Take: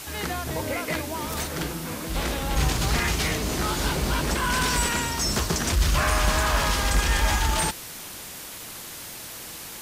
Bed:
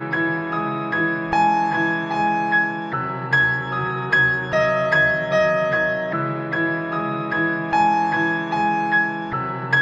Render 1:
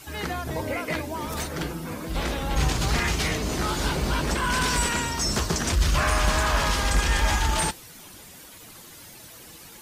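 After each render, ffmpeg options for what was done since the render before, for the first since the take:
ffmpeg -i in.wav -af "afftdn=noise_reduction=10:noise_floor=-39" out.wav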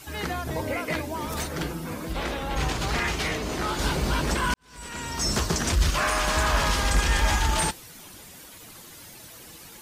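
ffmpeg -i in.wav -filter_complex "[0:a]asettb=1/sr,asplit=3[link_01][link_02][link_03];[link_01]atrim=end=2.134[link_04];[link_02]atrim=start=2.13:end=3.79,asetpts=PTS-STARTPTS,afade=type=in:duration=0.004:curve=qsin,afade=type=out:start_time=1.656:duration=0.004:curve=qsin,bass=frequency=250:gain=-5,treble=frequency=4000:gain=-5[link_05];[link_03]atrim=start=3.786[link_06];[link_04][link_05]acrossfade=duration=0.004:curve1=hsin:curve2=qsin[link_07];[link_07][link_06]acrossfade=duration=0.004:curve1=qsin:curve2=hsin,asettb=1/sr,asplit=3[link_08][link_09][link_10];[link_08]atrim=end=5.904[link_11];[link_09]atrim=start=5.9:end=6.36,asetpts=PTS-STARTPTS,afade=type=in:duration=0.004:curve=qsin,afade=type=out:start_time=0.456:duration=0.004:curve=qsin,equalizer=frequency=82:width=0.94:gain=-15[link_12];[link_10]atrim=start=6.356[link_13];[link_11][link_12]acrossfade=duration=0.004:curve1=hsin:curve2=qsin[link_14];[link_14][link_13]acrossfade=duration=0.004:curve1=qsin:curve2=hsin,asplit=2[link_15][link_16];[link_15]atrim=end=4.54,asetpts=PTS-STARTPTS,afade=type=out:start_time=4.536:duration=0.004:curve=hsin[link_17];[link_16]atrim=start=4.54,asetpts=PTS-STARTPTS,afade=type=in:duration=0.72:curve=qua[link_18];[link_17][link_18]concat=n=2:v=0:a=1" out.wav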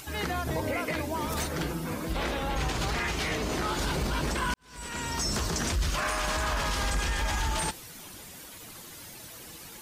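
ffmpeg -i in.wav -af "alimiter=limit=-20.5dB:level=0:latency=1:release=47,acompressor=mode=upward:threshold=-45dB:ratio=2.5" out.wav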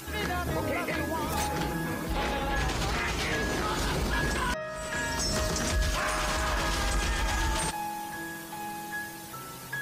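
ffmpeg -i in.wav -i bed.wav -filter_complex "[1:a]volume=-18dB[link_01];[0:a][link_01]amix=inputs=2:normalize=0" out.wav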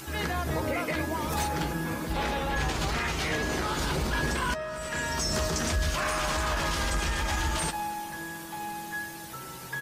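ffmpeg -i in.wav -filter_complex "[0:a]asplit=2[link_01][link_02];[link_02]adelay=13,volume=-11.5dB[link_03];[link_01][link_03]amix=inputs=2:normalize=0,asplit=2[link_04][link_05];[link_05]adelay=239.1,volume=-18dB,highshelf=frequency=4000:gain=-5.38[link_06];[link_04][link_06]amix=inputs=2:normalize=0" out.wav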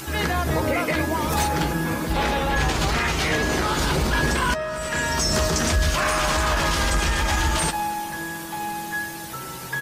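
ffmpeg -i in.wav -af "volume=7dB" out.wav

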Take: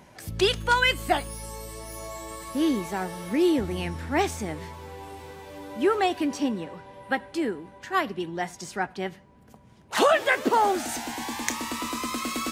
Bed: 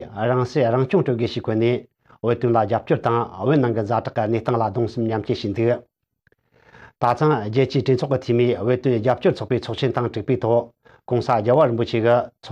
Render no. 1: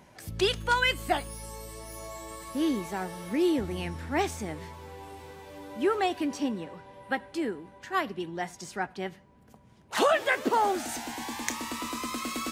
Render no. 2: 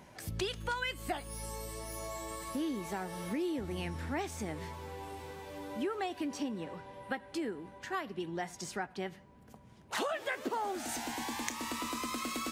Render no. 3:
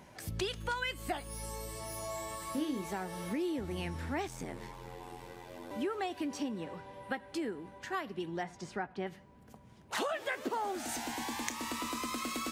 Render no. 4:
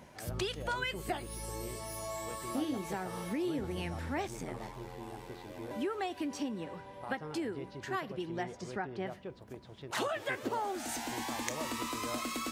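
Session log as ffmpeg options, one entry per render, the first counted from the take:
ffmpeg -i in.wav -af "volume=-3.5dB" out.wav
ffmpeg -i in.wav -af "acompressor=threshold=-34dB:ratio=4" out.wav
ffmpeg -i in.wav -filter_complex "[0:a]asettb=1/sr,asplit=3[link_01][link_02][link_03];[link_01]atrim=end=1.724[link_04];[link_02]atrim=start=1.72:end=2.84,asetpts=PTS-STARTPTS,afade=type=in:duration=0.004:curve=qsin,afade=type=out:start_time=1.116:duration=0.004:curve=qsin,asplit=2[link_05][link_06];[link_06]adelay=26,volume=-6dB[link_07];[link_05][link_07]amix=inputs=2:normalize=0,atrim=end_sample=49392[link_08];[link_03]atrim=start=2.836[link_09];[link_04][link_08]acrossfade=duration=0.004:curve1=hsin:curve2=qsin[link_10];[link_10][link_09]acrossfade=duration=0.004:curve1=qsin:curve2=hsin,asettb=1/sr,asplit=3[link_11][link_12][link_13];[link_11]atrim=end=4.274[link_14];[link_12]atrim=start=4.27:end=5.71,asetpts=PTS-STARTPTS,afade=type=in:duration=0.004:curve=qsin,afade=type=out:start_time=1.436:duration=0.004:curve=qsin,aeval=exprs='val(0)*sin(2*PI*43*n/s)':channel_layout=same[link_15];[link_13]atrim=start=5.706[link_16];[link_14][link_15]acrossfade=duration=0.004:curve1=hsin:curve2=qsin[link_17];[link_17][link_16]acrossfade=duration=0.004:curve1=qsin:curve2=hsin,asettb=1/sr,asplit=3[link_18][link_19][link_20];[link_18]atrim=end=8.434[link_21];[link_19]atrim=start=8.43:end=9.07,asetpts=PTS-STARTPTS,afade=type=in:duration=0.004:curve=qsin,afade=type=out:start_time=0.636:duration=0.004:curve=qsin,aemphasis=mode=reproduction:type=75fm[link_22];[link_20]atrim=start=9.066[link_23];[link_21][link_22]acrossfade=duration=0.004:curve1=hsin:curve2=qsin[link_24];[link_24][link_23]acrossfade=duration=0.004:curve1=qsin:curve2=hsin" out.wav
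ffmpeg -i in.wav -i bed.wav -filter_complex "[1:a]volume=-27dB[link_01];[0:a][link_01]amix=inputs=2:normalize=0" out.wav

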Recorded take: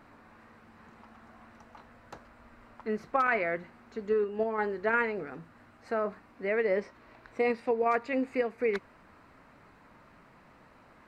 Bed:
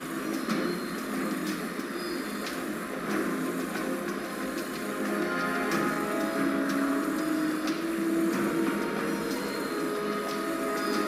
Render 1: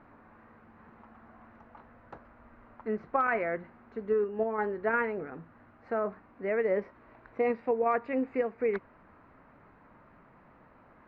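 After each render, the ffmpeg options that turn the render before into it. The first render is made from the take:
ffmpeg -i in.wav -af "lowpass=1800" out.wav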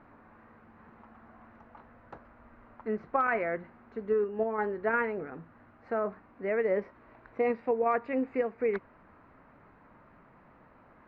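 ffmpeg -i in.wav -af anull out.wav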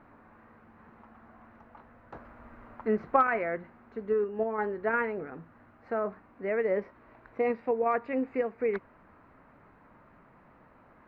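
ffmpeg -i in.wav -filter_complex "[0:a]asettb=1/sr,asplit=3[link_01][link_02][link_03];[link_01]atrim=end=2.144[link_04];[link_02]atrim=start=2.14:end=3.23,asetpts=PTS-STARTPTS,afade=type=in:duration=0.004:curve=qsin,afade=type=out:start_time=1.086:duration=0.004:curve=qsin,acontrast=25[link_05];[link_03]atrim=start=3.226[link_06];[link_04][link_05]acrossfade=duration=0.004:curve1=hsin:curve2=qsin[link_07];[link_07][link_06]acrossfade=duration=0.004:curve1=qsin:curve2=hsin" out.wav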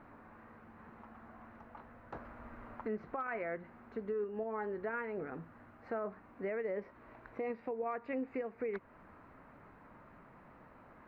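ffmpeg -i in.wav -af "acompressor=threshold=-40dB:ratio=1.5,alimiter=level_in=5.5dB:limit=-24dB:level=0:latency=1:release=176,volume=-5.5dB" out.wav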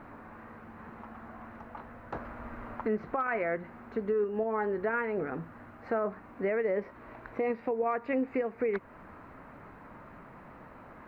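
ffmpeg -i in.wav -af "volume=8dB" out.wav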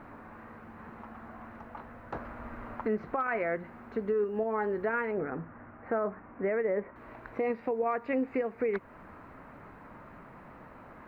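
ffmpeg -i in.wav -filter_complex "[0:a]asettb=1/sr,asplit=3[link_01][link_02][link_03];[link_01]atrim=end=5.114[link_04];[link_02]atrim=start=5.11:end=6.96,asetpts=PTS-STARTPTS,afade=type=in:duration=0.004:curve=qsin,afade=type=out:start_time=1.846:duration=0.004:curve=qsin,lowpass=frequency=2300:width=0.5412,lowpass=frequency=2300:width=1.3066[link_05];[link_03]atrim=start=6.956[link_06];[link_04][link_05]acrossfade=duration=0.004:curve1=hsin:curve2=qsin[link_07];[link_07][link_06]acrossfade=duration=0.004:curve1=qsin:curve2=hsin" out.wav

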